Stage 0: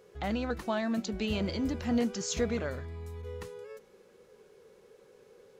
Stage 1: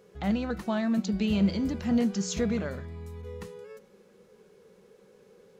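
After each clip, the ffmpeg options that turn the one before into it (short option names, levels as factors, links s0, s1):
-af "equalizer=f=190:w=3.4:g=12,bandreject=f=184.8:t=h:w=4,bandreject=f=369.6:t=h:w=4,bandreject=f=554.4:t=h:w=4,bandreject=f=739.2:t=h:w=4,bandreject=f=924:t=h:w=4,bandreject=f=1108.8:t=h:w=4,bandreject=f=1293.6:t=h:w=4,bandreject=f=1478.4:t=h:w=4,bandreject=f=1663.2:t=h:w=4,bandreject=f=1848:t=h:w=4,bandreject=f=2032.8:t=h:w=4,bandreject=f=2217.6:t=h:w=4,bandreject=f=2402.4:t=h:w=4,bandreject=f=2587.2:t=h:w=4,bandreject=f=2772:t=h:w=4,bandreject=f=2956.8:t=h:w=4,bandreject=f=3141.6:t=h:w=4,bandreject=f=3326.4:t=h:w=4,bandreject=f=3511.2:t=h:w=4,bandreject=f=3696:t=h:w=4,bandreject=f=3880.8:t=h:w=4,bandreject=f=4065.6:t=h:w=4,bandreject=f=4250.4:t=h:w=4,bandreject=f=4435.2:t=h:w=4,bandreject=f=4620:t=h:w=4,bandreject=f=4804.8:t=h:w=4,bandreject=f=4989.6:t=h:w=4"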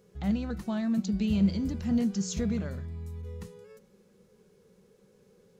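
-af "bass=f=250:g=10,treble=f=4000:g=6,volume=0.447"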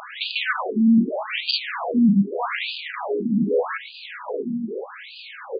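-filter_complex "[0:a]asplit=2[s0][s1];[s1]adelay=863,lowpass=f=1800:p=1,volume=0.2,asplit=2[s2][s3];[s3]adelay=863,lowpass=f=1800:p=1,volume=0.33,asplit=2[s4][s5];[s5]adelay=863,lowpass=f=1800:p=1,volume=0.33[s6];[s0][s2][s4][s6]amix=inputs=4:normalize=0,asplit=2[s7][s8];[s8]highpass=f=720:p=1,volume=141,asoftclip=type=tanh:threshold=0.188[s9];[s7][s9]amix=inputs=2:normalize=0,lowpass=f=5300:p=1,volume=0.501,afftfilt=real='re*between(b*sr/1024,210*pow(3500/210,0.5+0.5*sin(2*PI*0.82*pts/sr))/1.41,210*pow(3500/210,0.5+0.5*sin(2*PI*0.82*pts/sr))*1.41)':imag='im*between(b*sr/1024,210*pow(3500/210,0.5+0.5*sin(2*PI*0.82*pts/sr))/1.41,210*pow(3500/210,0.5+0.5*sin(2*PI*0.82*pts/sr))*1.41)':win_size=1024:overlap=0.75,volume=2.24"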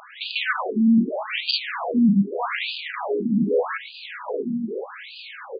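-af "dynaudnorm=f=170:g=3:m=2.51,volume=0.422"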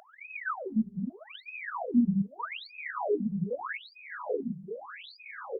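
-af "afftfilt=real='re*(1-between(b*sr/1024,250*pow(3700/250,0.5+0.5*sin(2*PI*0.81*pts/sr))/1.41,250*pow(3700/250,0.5+0.5*sin(2*PI*0.81*pts/sr))*1.41))':imag='im*(1-between(b*sr/1024,250*pow(3700/250,0.5+0.5*sin(2*PI*0.81*pts/sr))/1.41,250*pow(3700/250,0.5+0.5*sin(2*PI*0.81*pts/sr))*1.41))':win_size=1024:overlap=0.75,volume=0.794"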